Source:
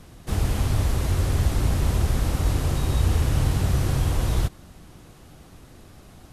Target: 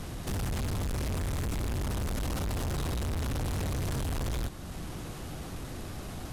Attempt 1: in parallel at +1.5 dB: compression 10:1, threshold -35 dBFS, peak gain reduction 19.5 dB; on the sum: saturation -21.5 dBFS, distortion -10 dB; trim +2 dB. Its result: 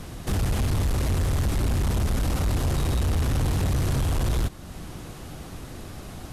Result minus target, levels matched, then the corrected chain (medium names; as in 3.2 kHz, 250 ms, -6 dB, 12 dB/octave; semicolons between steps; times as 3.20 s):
saturation: distortion -6 dB
in parallel at +1.5 dB: compression 10:1, threshold -35 dBFS, peak gain reduction 19.5 dB; on the sum: saturation -32 dBFS, distortion -4 dB; trim +2 dB